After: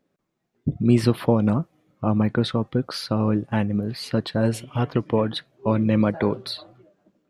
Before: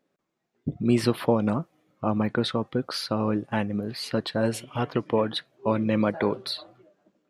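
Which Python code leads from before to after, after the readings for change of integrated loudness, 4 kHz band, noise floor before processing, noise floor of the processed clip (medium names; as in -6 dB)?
+3.5 dB, 0.0 dB, -79 dBFS, -76 dBFS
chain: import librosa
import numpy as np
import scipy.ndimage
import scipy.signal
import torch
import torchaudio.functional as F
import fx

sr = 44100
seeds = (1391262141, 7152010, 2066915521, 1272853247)

y = fx.low_shelf(x, sr, hz=190.0, db=10.5)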